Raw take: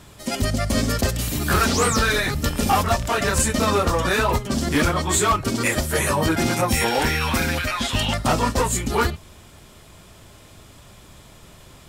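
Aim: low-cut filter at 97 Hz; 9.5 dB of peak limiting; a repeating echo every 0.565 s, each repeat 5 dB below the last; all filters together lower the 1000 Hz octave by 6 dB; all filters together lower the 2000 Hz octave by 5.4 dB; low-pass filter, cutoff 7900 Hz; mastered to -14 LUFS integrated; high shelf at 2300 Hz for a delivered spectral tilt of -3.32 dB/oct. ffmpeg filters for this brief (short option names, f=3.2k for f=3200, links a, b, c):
-af "highpass=97,lowpass=7.9k,equalizer=f=1k:t=o:g=-7,equalizer=f=2k:t=o:g=-8.5,highshelf=f=2.3k:g=7,alimiter=limit=-16.5dB:level=0:latency=1,aecho=1:1:565|1130|1695|2260|2825|3390|3955:0.562|0.315|0.176|0.0988|0.0553|0.031|0.0173,volume=10dB"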